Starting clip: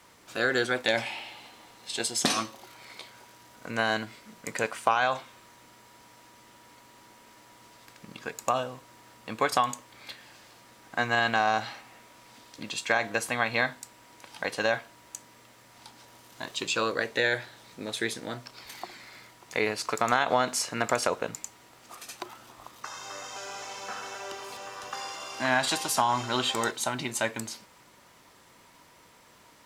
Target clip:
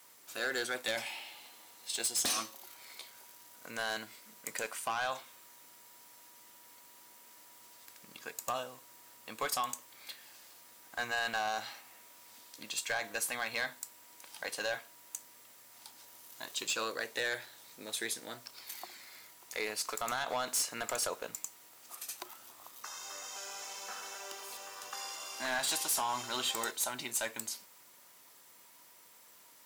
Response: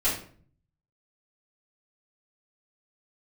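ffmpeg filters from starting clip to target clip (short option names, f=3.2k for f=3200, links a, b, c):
-af "aemphasis=mode=production:type=bsi,volume=19.5dB,asoftclip=hard,volume=-19.5dB,volume=-8dB"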